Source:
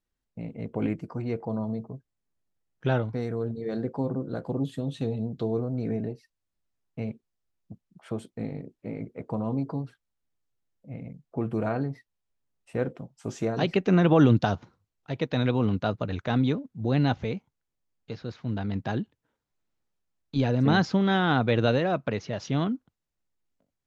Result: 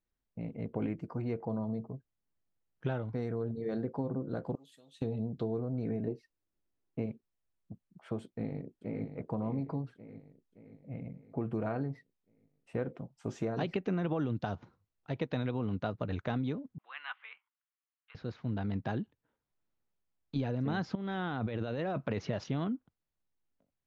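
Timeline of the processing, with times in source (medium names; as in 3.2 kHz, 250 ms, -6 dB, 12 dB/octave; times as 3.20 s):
4.55–5.02 s: differentiator
6.07–7.06 s: peaking EQ 340 Hz +9 dB 1 oct
8.24–9.06 s: echo throw 570 ms, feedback 55%, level -8 dB
16.78–18.15 s: Chebyshev band-pass 1.1–3.1 kHz, order 3
20.95–22.44 s: compressor with a negative ratio -30 dBFS
whole clip: treble shelf 5 kHz -11.5 dB; compression 10:1, threshold -26 dBFS; trim -3 dB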